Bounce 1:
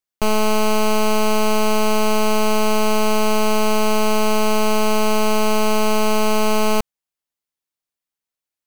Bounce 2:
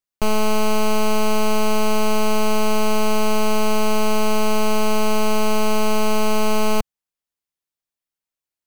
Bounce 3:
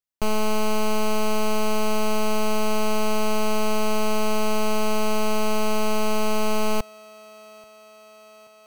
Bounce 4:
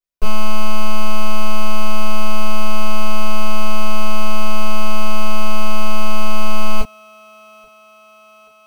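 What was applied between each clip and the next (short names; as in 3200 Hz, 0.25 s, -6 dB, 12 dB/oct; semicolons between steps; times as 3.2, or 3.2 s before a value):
low shelf 130 Hz +4 dB; gain -2.5 dB
thinning echo 0.831 s, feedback 73%, high-pass 180 Hz, level -23 dB; gain -4 dB
reverb, pre-delay 4 ms, DRR -7.5 dB; gain -12.5 dB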